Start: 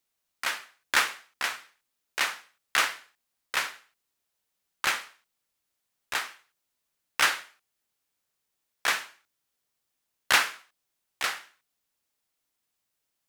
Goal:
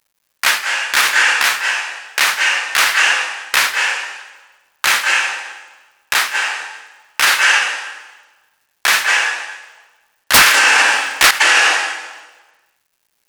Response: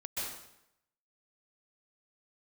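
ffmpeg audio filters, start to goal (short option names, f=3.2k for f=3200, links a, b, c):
-filter_complex "[0:a]highshelf=f=2.7k:g=7,acrusher=bits=10:mix=0:aa=0.000001,asettb=1/sr,asplit=3[a][b][c];[a]atrim=end=10.344[d];[b]atrim=start=10.34:end=11.31,asetpts=PTS-STARTPTS,afade=t=in:d=0.004:c=qsin,afade=t=out:st=0.966:d=0.004:c=qsin,aeval=exprs='0.631*sin(PI/2*4.47*val(0)/0.631)':c=same[e];[c]atrim=start=11.306[f];[d][e]acrossfade=d=0.004:c1=hsin:c2=qsin[g];[g][f]acrossfade=d=0.004:c1=qsin:c2=hsin,asplit=2[h][i];[i]highpass=f=270:w=0.5412,highpass=f=270:w=1.3066,equalizer=f=530:t=q:w=4:g=5,equalizer=f=850:t=q:w=4:g=9,equalizer=f=1.7k:t=q:w=4:g=10,equalizer=f=2.7k:t=q:w=4:g=8,equalizer=f=3.9k:t=q:w=4:g=-4,lowpass=f=8.2k:w=0.5412,lowpass=f=8.2k:w=1.3066[j];[1:a]atrim=start_sample=2205,asetrate=27783,aresample=44100,highshelf=f=11k:g=7.5[k];[j][k]afir=irnorm=-1:irlink=0,volume=-15dB[l];[h][l]amix=inputs=2:normalize=0,alimiter=level_in=15.5dB:limit=-1dB:release=50:level=0:latency=1,volume=-1dB"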